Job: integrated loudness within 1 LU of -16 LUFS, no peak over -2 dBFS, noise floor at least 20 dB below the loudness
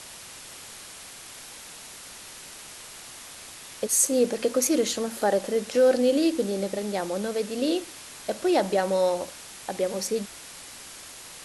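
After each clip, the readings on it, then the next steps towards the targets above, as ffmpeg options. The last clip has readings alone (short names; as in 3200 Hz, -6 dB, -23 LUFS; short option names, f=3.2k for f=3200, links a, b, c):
noise floor -44 dBFS; noise floor target -45 dBFS; loudness -25.0 LUFS; peak -9.5 dBFS; loudness target -16.0 LUFS
-> -af "afftdn=nr=6:nf=-44"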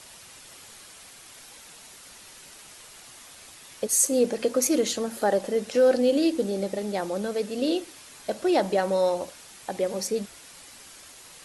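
noise floor -48 dBFS; loudness -25.0 LUFS; peak -9.5 dBFS; loudness target -16.0 LUFS
-> -af "volume=9dB,alimiter=limit=-2dB:level=0:latency=1"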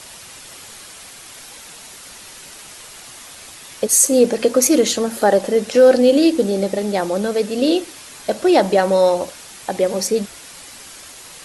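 loudness -16.0 LUFS; peak -2.0 dBFS; noise floor -39 dBFS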